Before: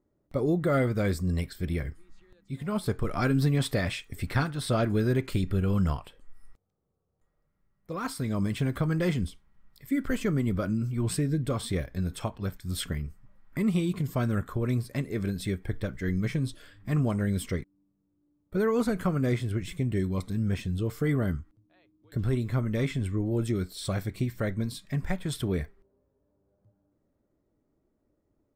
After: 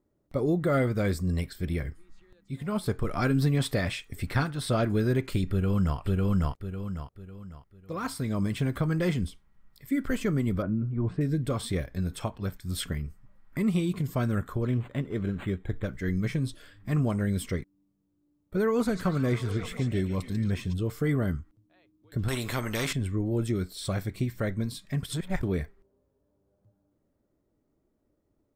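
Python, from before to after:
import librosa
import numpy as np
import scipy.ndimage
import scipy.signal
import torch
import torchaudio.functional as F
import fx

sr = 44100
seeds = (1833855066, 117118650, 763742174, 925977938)

y = fx.echo_throw(x, sr, start_s=5.5, length_s=0.48, ms=550, feedback_pct=35, wet_db=0.0)
y = fx.lowpass(y, sr, hz=1200.0, slope=12, at=(10.62, 11.21))
y = fx.resample_linear(y, sr, factor=8, at=(14.62, 15.84))
y = fx.echo_stepped(y, sr, ms=143, hz=5100.0, octaves=-0.7, feedback_pct=70, wet_db=-2.0, at=(18.84, 20.72), fade=0.02)
y = fx.spectral_comp(y, sr, ratio=2.0, at=(22.28, 22.93))
y = fx.edit(y, sr, fx.reverse_span(start_s=25.03, length_s=0.4), tone=tone)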